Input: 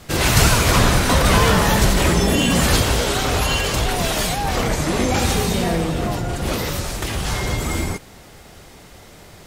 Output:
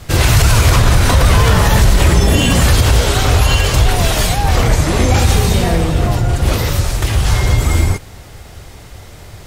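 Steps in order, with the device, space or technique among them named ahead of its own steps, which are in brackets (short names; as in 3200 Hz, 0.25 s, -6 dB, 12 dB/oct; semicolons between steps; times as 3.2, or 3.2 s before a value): car stereo with a boomy subwoofer (resonant low shelf 140 Hz +7 dB, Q 1.5; limiter -6 dBFS, peak gain reduction 8.5 dB); gain +4.5 dB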